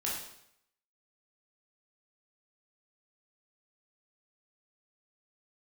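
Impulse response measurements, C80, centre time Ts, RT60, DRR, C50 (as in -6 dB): 5.5 dB, 52 ms, 0.75 s, -5.5 dB, 2.0 dB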